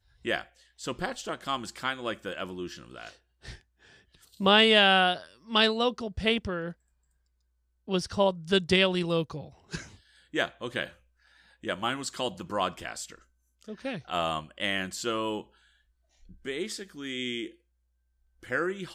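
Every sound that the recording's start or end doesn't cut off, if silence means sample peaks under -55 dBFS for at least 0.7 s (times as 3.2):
7.87–17.56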